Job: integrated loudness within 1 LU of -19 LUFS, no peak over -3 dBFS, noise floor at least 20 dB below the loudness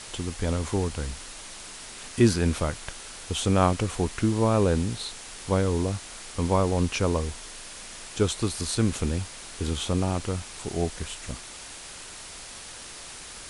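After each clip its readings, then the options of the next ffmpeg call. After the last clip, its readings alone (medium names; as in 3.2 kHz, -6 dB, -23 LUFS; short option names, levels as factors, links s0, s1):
noise floor -42 dBFS; noise floor target -47 dBFS; loudness -27.0 LUFS; peak level -7.5 dBFS; loudness target -19.0 LUFS
-> -af "afftdn=nr=6:nf=-42"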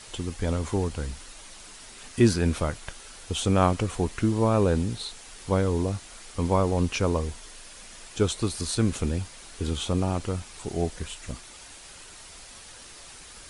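noise floor -46 dBFS; noise floor target -47 dBFS
-> -af "afftdn=nr=6:nf=-46"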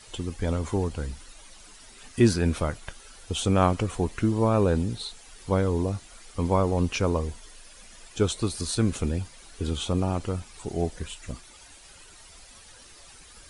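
noise floor -50 dBFS; loudness -27.0 LUFS; peak level -7.5 dBFS; loudness target -19.0 LUFS
-> -af "volume=2.51,alimiter=limit=0.708:level=0:latency=1"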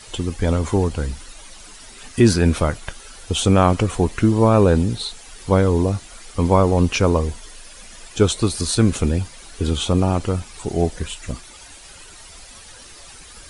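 loudness -19.5 LUFS; peak level -3.0 dBFS; noise floor -42 dBFS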